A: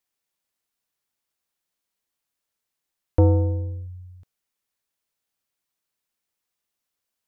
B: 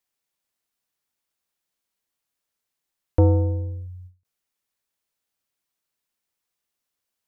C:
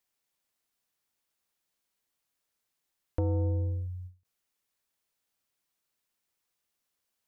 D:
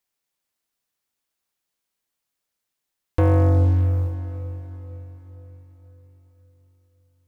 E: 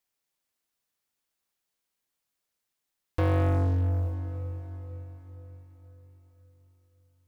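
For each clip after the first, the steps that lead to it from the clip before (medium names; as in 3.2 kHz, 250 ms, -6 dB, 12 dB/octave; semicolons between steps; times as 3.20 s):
endings held to a fixed fall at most 220 dB/s
peak limiter -19 dBFS, peak gain reduction 9.5 dB; compression, threshold -26 dBFS, peak gain reduction 5 dB
waveshaping leveller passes 3; echo that smears into a reverb 458 ms, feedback 50%, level -12.5 dB; trim +6.5 dB
saturation -20 dBFS, distortion -13 dB; on a send at -17 dB: reverberation RT60 2.3 s, pre-delay 103 ms; on the sum: trim -2 dB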